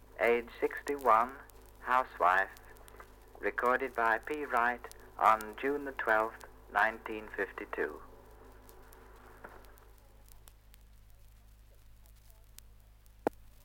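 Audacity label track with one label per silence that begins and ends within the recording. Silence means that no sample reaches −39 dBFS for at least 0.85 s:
10.740000	12.060000	silence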